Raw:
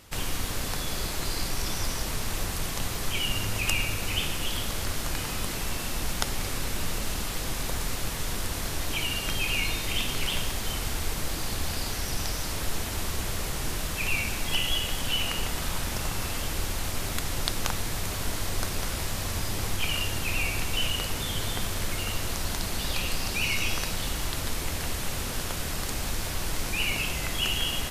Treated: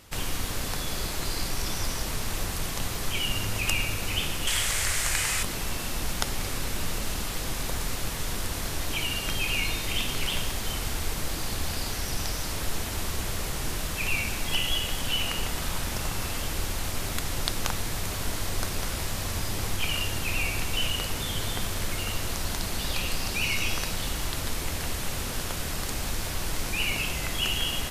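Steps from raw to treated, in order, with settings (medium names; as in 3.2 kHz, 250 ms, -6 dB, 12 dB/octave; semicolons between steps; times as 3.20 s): 4.47–5.43 s: graphic EQ 250/2000/8000 Hz -8/+10/+11 dB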